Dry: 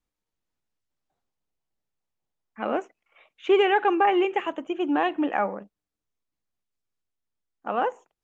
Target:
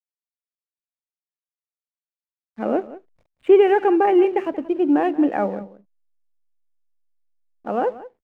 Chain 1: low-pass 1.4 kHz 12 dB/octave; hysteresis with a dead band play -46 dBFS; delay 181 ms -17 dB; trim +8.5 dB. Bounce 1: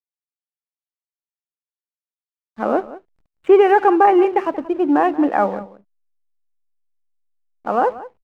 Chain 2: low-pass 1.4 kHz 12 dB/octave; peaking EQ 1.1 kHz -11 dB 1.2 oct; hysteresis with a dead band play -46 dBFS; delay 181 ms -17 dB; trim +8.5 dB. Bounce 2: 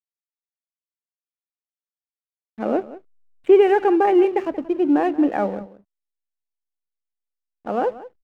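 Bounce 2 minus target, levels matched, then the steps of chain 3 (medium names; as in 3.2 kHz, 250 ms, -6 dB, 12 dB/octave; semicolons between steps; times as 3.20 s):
hysteresis with a dead band: distortion +7 dB
low-pass 1.4 kHz 12 dB/octave; peaking EQ 1.1 kHz -11 dB 1.2 oct; hysteresis with a dead band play -53.5 dBFS; delay 181 ms -17 dB; trim +8.5 dB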